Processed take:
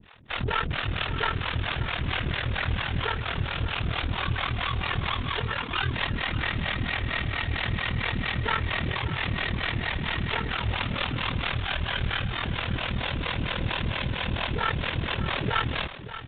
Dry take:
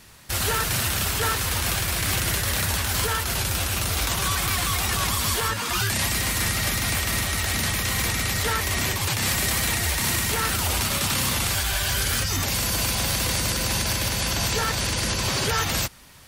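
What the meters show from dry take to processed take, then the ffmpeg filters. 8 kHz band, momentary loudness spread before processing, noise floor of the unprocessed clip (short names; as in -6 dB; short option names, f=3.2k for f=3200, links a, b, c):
under -40 dB, 2 LU, -28 dBFS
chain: -filter_complex "[0:a]acrossover=split=420[a][b];[a]aeval=exprs='val(0)*(1-1/2+1/2*cos(2*PI*4.4*n/s))':c=same[c];[b]aeval=exprs='val(0)*(1-1/2-1/2*cos(2*PI*4.4*n/s))':c=same[d];[c][d]amix=inputs=2:normalize=0,aeval=exprs='clip(val(0),-1,0.0422)':c=same,aeval=exprs='val(0)*sin(2*PI*20*n/s)':c=same,asplit=2[e][f];[f]aecho=0:1:581:0.237[g];[e][g]amix=inputs=2:normalize=0,aresample=8000,aresample=44100,volume=6dB"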